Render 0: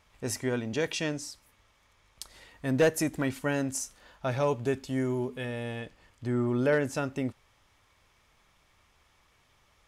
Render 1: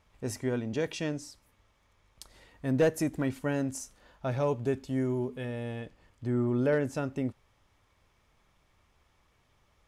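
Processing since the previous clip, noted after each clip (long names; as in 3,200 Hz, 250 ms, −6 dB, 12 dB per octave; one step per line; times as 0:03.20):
tilt shelving filter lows +3.5 dB, about 850 Hz
level −3 dB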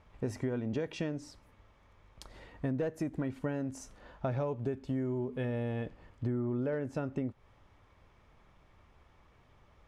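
low-pass filter 1,700 Hz 6 dB per octave
downward compressor 10 to 1, threshold −37 dBFS, peak gain reduction 16.5 dB
level +6.5 dB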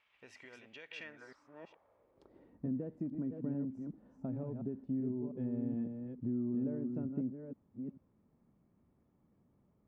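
delay that plays each chunk backwards 443 ms, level −5.5 dB
band-pass filter sweep 2,700 Hz → 220 Hz, 0:00.87–0:02.61
level +1.5 dB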